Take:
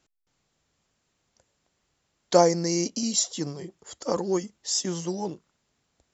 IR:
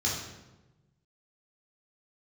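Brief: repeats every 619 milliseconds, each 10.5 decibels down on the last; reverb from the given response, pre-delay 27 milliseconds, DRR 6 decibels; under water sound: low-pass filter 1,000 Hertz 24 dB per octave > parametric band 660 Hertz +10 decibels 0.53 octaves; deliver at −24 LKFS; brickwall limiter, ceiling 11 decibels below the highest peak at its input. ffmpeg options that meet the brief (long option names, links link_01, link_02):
-filter_complex "[0:a]alimiter=limit=-16dB:level=0:latency=1,aecho=1:1:619|1238|1857:0.299|0.0896|0.0269,asplit=2[link_01][link_02];[1:a]atrim=start_sample=2205,adelay=27[link_03];[link_02][link_03]afir=irnorm=-1:irlink=0,volume=-14dB[link_04];[link_01][link_04]amix=inputs=2:normalize=0,lowpass=frequency=1000:width=0.5412,lowpass=frequency=1000:width=1.3066,equalizer=frequency=660:width_type=o:width=0.53:gain=10,volume=4dB"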